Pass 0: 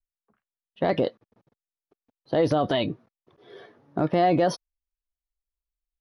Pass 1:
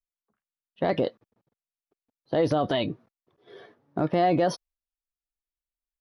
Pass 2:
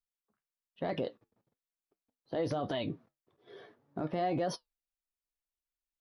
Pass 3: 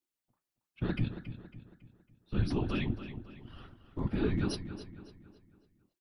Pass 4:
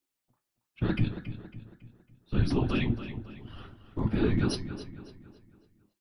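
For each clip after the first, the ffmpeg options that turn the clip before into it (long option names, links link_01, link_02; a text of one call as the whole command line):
ffmpeg -i in.wav -af "agate=range=-7dB:threshold=-53dB:ratio=16:detection=peak,volume=-1.5dB" out.wav
ffmpeg -i in.wav -af "alimiter=limit=-20dB:level=0:latency=1:release=63,flanger=delay=6.3:depth=4.8:regen=-71:speed=1.1:shape=triangular" out.wav
ffmpeg -i in.wav -filter_complex "[0:a]afftfilt=real='hypot(re,im)*cos(2*PI*random(0))':imag='hypot(re,im)*sin(2*PI*random(1))':win_size=512:overlap=0.75,afreqshift=-390,asplit=2[link_01][link_02];[link_02]adelay=276,lowpass=frequency=4800:poles=1,volume=-11dB,asplit=2[link_03][link_04];[link_04]adelay=276,lowpass=frequency=4800:poles=1,volume=0.44,asplit=2[link_05][link_06];[link_06]adelay=276,lowpass=frequency=4800:poles=1,volume=0.44,asplit=2[link_07][link_08];[link_08]adelay=276,lowpass=frequency=4800:poles=1,volume=0.44,asplit=2[link_09][link_10];[link_10]adelay=276,lowpass=frequency=4800:poles=1,volume=0.44[link_11];[link_03][link_05][link_07][link_09][link_11]amix=inputs=5:normalize=0[link_12];[link_01][link_12]amix=inputs=2:normalize=0,volume=8.5dB" out.wav
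ffmpeg -i in.wav -af "flanger=delay=7.2:depth=2.9:regen=77:speed=0.41:shape=triangular,volume=9dB" out.wav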